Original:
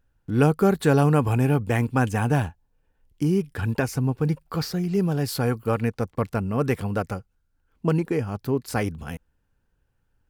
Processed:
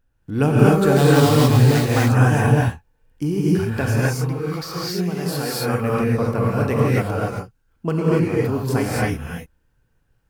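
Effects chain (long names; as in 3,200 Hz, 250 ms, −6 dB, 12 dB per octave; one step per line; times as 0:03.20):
0:00.96–0:01.89: sample-rate reduction 4,400 Hz, jitter 20%
0:03.86–0:05.74: low-shelf EQ 310 Hz −10 dB
reverb whose tail is shaped and stops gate 300 ms rising, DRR −6 dB
level −1 dB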